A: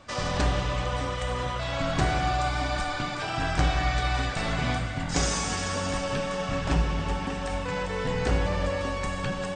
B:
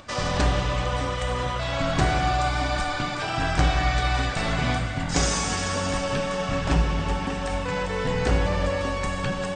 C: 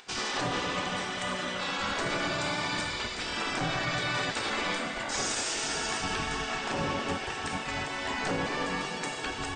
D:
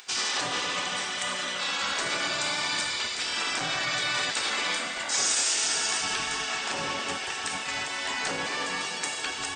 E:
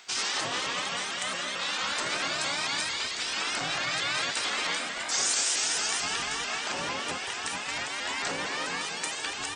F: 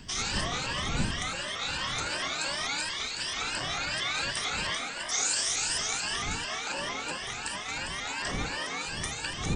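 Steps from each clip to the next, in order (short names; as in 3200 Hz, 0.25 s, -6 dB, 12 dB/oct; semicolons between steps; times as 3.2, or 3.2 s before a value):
upward compressor, threshold -48 dBFS; gain +3 dB
spectral gate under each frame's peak -10 dB weak; limiter -21 dBFS, peak gain reduction 10.5 dB
tilt +3 dB/oct
shaped vibrato saw up 4.5 Hz, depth 160 cents; gain -1.5 dB
moving spectral ripple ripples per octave 1.3, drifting +2.8 Hz, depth 11 dB; wind noise 160 Hz -37 dBFS; gain -3.5 dB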